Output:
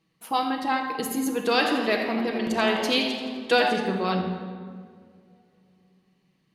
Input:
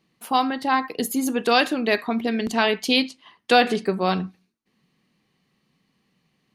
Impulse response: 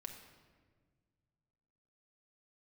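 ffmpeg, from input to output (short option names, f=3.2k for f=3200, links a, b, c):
-filter_complex "[0:a]asettb=1/sr,asplit=3[a][b][c];[a]atrim=end=1.514[d];[b]atrim=start=1.51:end=3.69,asetpts=PTS-STARTPTS,afade=t=in:d=0.004:c=qsin,afade=t=out:st=2.176:d=0.004:c=qsin,asplit=7[e][f][g][h][i][j][k];[f]adelay=85,afreqshift=130,volume=-11dB[l];[g]adelay=170,afreqshift=260,volume=-16.5dB[m];[h]adelay=255,afreqshift=390,volume=-22dB[n];[i]adelay=340,afreqshift=520,volume=-27.5dB[o];[j]adelay=425,afreqshift=650,volume=-33.1dB[p];[k]adelay=510,afreqshift=780,volume=-38.6dB[q];[e][l][m][n][o][p][q]amix=inputs=7:normalize=0,atrim=end_sample=96138[r];[c]atrim=start=3.686[s];[d][r]acrossfade=d=0.004:c1=hsin:c2=qsin[t];[t][s]acrossfade=d=0.004:c1=qsin:c2=hsin[u];[1:a]atrim=start_sample=2205,asetrate=34839,aresample=44100[v];[u][v]afir=irnorm=-1:irlink=0"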